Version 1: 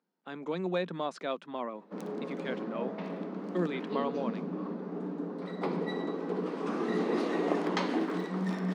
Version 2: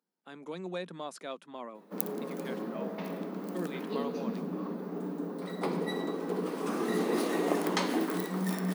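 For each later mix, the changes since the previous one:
speech -6.5 dB; master: remove air absorption 130 m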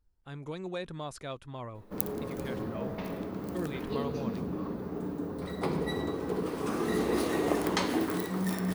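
master: remove Chebyshev high-pass 170 Hz, order 6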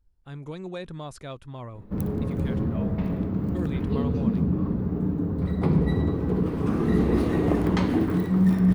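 background: add tone controls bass +12 dB, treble -10 dB; master: add low shelf 210 Hz +7 dB

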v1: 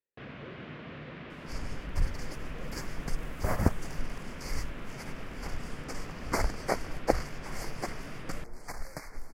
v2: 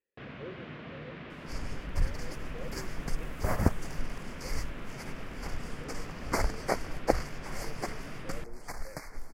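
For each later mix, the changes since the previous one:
speech +6.5 dB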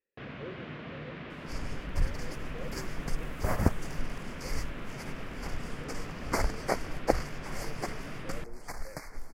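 reverb: on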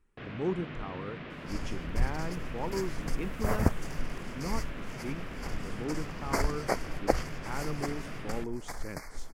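speech: remove vowel filter e

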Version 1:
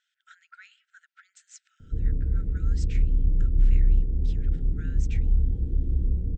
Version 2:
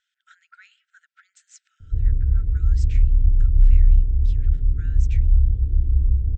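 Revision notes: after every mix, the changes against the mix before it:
background -5.0 dB; master: add resonant low shelf 130 Hz +10 dB, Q 1.5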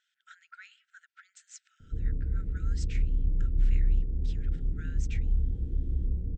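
master: add resonant low shelf 130 Hz -10 dB, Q 1.5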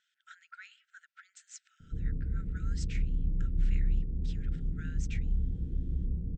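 background -4.0 dB; master: add bell 170 Hz +8 dB 1 oct

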